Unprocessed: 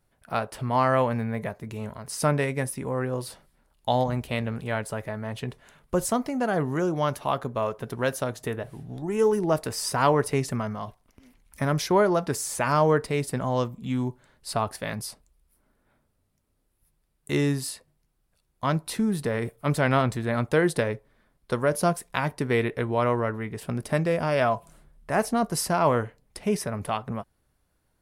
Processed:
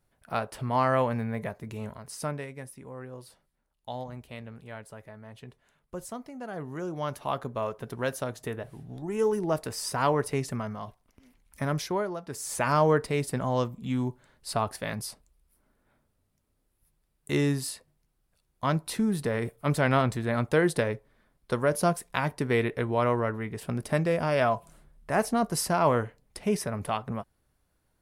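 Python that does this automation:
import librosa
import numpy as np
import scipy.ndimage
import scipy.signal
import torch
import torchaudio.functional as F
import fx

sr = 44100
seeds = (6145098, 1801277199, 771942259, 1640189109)

y = fx.gain(x, sr, db=fx.line((1.88, -2.5), (2.5, -13.5), (6.39, -13.5), (7.33, -4.0), (11.76, -4.0), (12.22, -14.0), (12.53, -1.5)))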